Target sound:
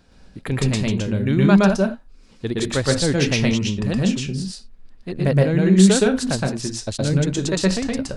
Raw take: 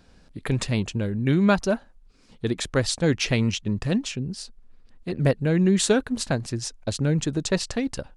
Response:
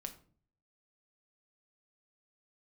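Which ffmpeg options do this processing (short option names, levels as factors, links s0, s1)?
-filter_complex "[0:a]asplit=2[s0][s1];[1:a]atrim=start_sample=2205,atrim=end_sample=4410,adelay=118[s2];[s1][s2]afir=irnorm=-1:irlink=0,volume=1.78[s3];[s0][s3]amix=inputs=2:normalize=0"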